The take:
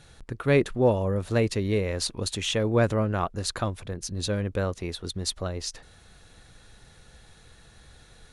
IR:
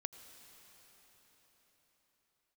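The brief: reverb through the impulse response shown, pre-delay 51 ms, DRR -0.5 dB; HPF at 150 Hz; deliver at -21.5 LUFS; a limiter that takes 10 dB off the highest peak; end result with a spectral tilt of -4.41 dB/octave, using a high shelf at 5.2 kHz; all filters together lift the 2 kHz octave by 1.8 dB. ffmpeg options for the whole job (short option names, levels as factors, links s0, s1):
-filter_complex "[0:a]highpass=150,equalizer=f=2000:t=o:g=3,highshelf=f=5200:g=-5,alimiter=limit=0.133:level=0:latency=1,asplit=2[s0][s1];[1:a]atrim=start_sample=2205,adelay=51[s2];[s1][s2]afir=irnorm=-1:irlink=0,volume=1.41[s3];[s0][s3]amix=inputs=2:normalize=0,volume=2.11"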